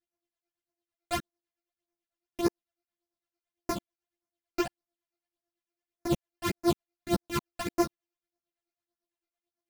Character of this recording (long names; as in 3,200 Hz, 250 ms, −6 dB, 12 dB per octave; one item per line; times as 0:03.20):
a buzz of ramps at a fixed pitch in blocks of 128 samples
phaser sweep stages 12, 1.7 Hz, lowest notch 170–3,400 Hz
tremolo triangle 9 Hz, depth 85%
a shimmering, thickened sound